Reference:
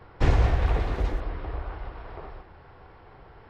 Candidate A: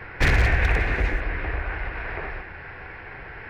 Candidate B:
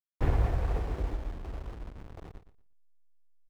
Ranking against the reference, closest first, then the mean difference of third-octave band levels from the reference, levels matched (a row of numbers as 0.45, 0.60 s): A, B; 3.5, 8.0 dB